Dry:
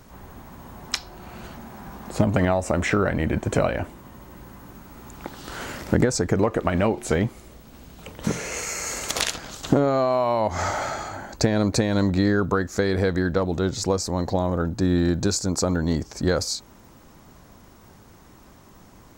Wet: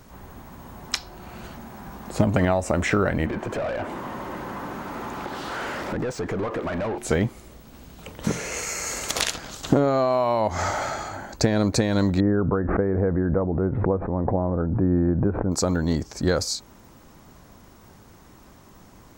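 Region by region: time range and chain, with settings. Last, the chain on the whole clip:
0:03.26–0:06.98: downward compressor 2 to 1, threshold −38 dBFS + mid-hump overdrive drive 28 dB, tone 1,100 Hz, clips at −18.5 dBFS
0:12.20–0:15.52: Gaussian smoothing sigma 6.5 samples + background raised ahead of every attack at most 39 dB per second
whole clip: no processing

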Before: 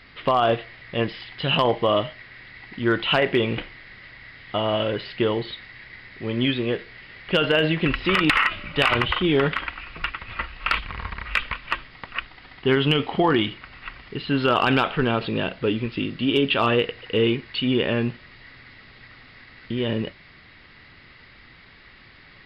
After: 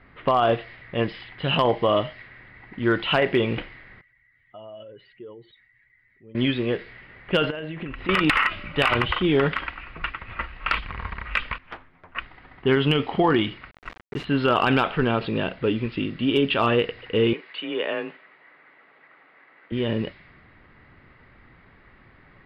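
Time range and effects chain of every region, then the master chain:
0:04.01–0:06.35: expanding power law on the bin magnitudes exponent 1.8 + first-order pre-emphasis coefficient 0.9
0:07.50–0:08.09: high-shelf EQ 5,700 Hz −12 dB + downward compressor 12 to 1, threshold −28 dBFS
0:11.58–0:12.15: high-shelf EQ 2,500 Hz −6.5 dB + stiff-string resonator 86 Hz, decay 0.22 s, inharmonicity 0.002 + highs frequency-modulated by the lows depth 0.77 ms
0:13.71–0:14.25: high-frequency loss of the air 140 metres + bit-depth reduction 6 bits, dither none + transient designer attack +1 dB, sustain +6 dB
0:17.33–0:19.72: band-pass filter 450–3,500 Hz + frequency shifter +28 Hz
whole clip: low-pass that shuts in the quiet parts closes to 1,300 Hz, open at −17.5 dBFS; dynamic equaliser 4,500 Hz, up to −4 dB, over −40 dBFS, Q 0.78

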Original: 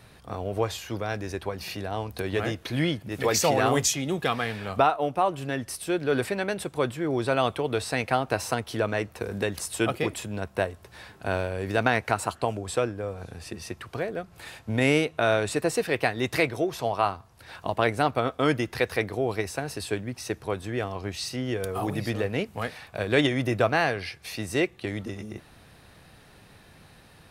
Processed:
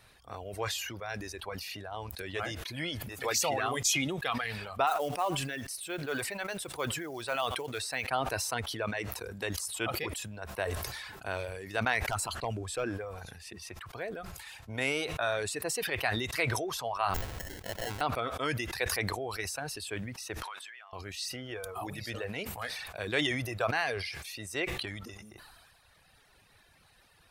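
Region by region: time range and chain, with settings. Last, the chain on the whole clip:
0:04.87–0:08.08: low-shelf EQ 240 Hz −5 dB + log-companded quantiser 6 bits + single-tap delay 88 ms −21.5 dB
0:12.02–0:12.84: hard clipping −17 dBFS + low-shelf EQ 210 Hz +6.5 dB
0:17.14–0:18.01: sample-rate reduction 1,200 Hz + gain into a clipping stage and back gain 22 dB
0:20.42–0:20.93: high-pass filter 1,300 Hz + high-shelf EQ 7,000 Hz −11.5 dB + downward compressor, threshold −46 dBFS
whole clip: reverb reduction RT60 1.4 s; parametric band 200 Hz −10.5 dB 2.9 octaves; level that may fall only so fast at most 32 dB per second; level −4 dB

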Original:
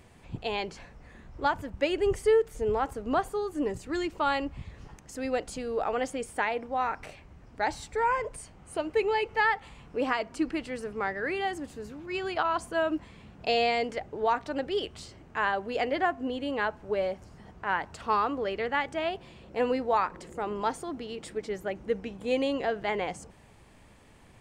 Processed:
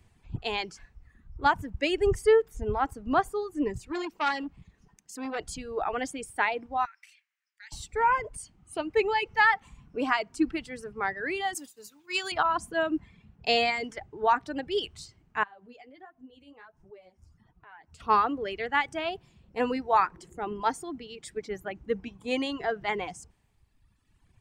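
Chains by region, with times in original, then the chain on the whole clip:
0:03.92–0:05.39: low shelf with overshoot 140 Hz −9 dB, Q 1.5 + saturating transformer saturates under 1,400 Hz
0:06.85–0:07.72: Chebyshev high-pass filter 1,800 Hz, order 3 + downward compressor 3 to 1, threshold −43 dBFS
0:11.54–0:12.32: downward expander −41 dBFS + RIAA equalisation recording
0:15.43–0:18.00: downward compressor 3 to 1, threshold −42 dBFS + flanger 1.4 Hz, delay 5.2 ms, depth 9.3 ms, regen +35%
whole clip: reverb reduction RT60 1.9 s; parametric band 550 Hz −7.5 dB 0.4 octaves; multiband upward and downward expander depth 40%; level +2.5 dB

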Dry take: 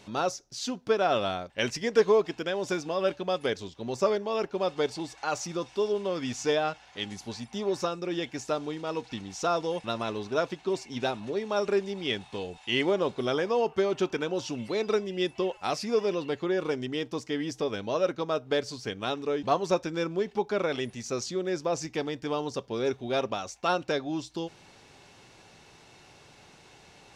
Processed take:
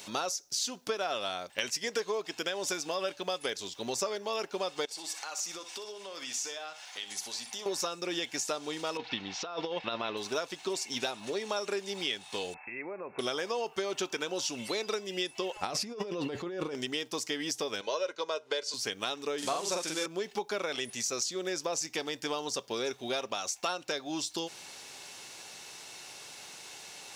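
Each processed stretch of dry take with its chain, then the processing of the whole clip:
0:04.85–0:07.66: parametric band 120 Hz −12 dB 2.9 octaves + downward compressor 4 to 1, threshold −44 dBFS + flutter between parallel walls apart 10.5 metres, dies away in 0.33 s
0:08.97–0:10.17: low-pass filter 3,800 Hz 24 dB per octave + compressor whose output falls as the input rises −32 dBFS, ratio −0.5
0:12.54–0:13.19: downward compressor 5 to 1, threshold −39 dBFS + linear-phase brick-wall low-pass 2,700 Hz
0:15.56–0:16.75: spectral tilt −3 dB per octave + compressor whose output falls as the input rises −33 dBFS
0:17.81–0:18.74: band-pass filter 310–7,200 Hz + comb filter 2 ms, depth 55%
0:19.38–0:20.06: spike at every zero crossing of −29 dBFS + low-pass filter 7,900 Hz 24 dB per octave + double-tracking delay 45 ms −2 dB
whole clip: RIAA equalisation recording; downward compressor 5 to 1, threshold −34 dBFS; level +3.5 dB

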